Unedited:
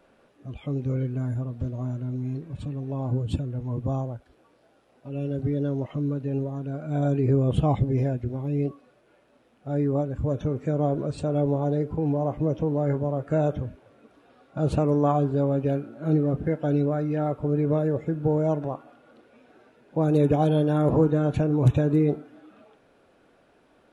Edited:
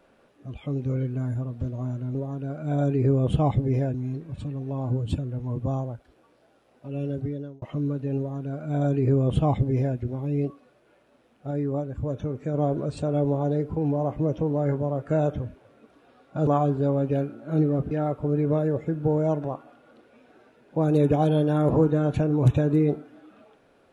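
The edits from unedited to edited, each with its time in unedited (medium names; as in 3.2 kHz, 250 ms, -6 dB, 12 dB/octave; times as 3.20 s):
5.29–5.83 s: fade out
6.39–8.18 s: copy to 2.15 s
9.72–10.75 s: gain -3 dB
14.68–15.01 s: delete
16.45–17.11 s: delete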